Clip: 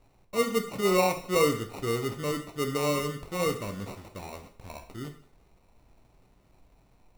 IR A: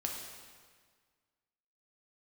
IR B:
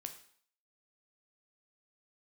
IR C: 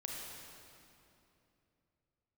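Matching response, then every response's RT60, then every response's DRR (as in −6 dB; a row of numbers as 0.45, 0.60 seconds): B; 1.7, 0.55, 2.9 seconds; −0.5, 5.5, −2.0 decibels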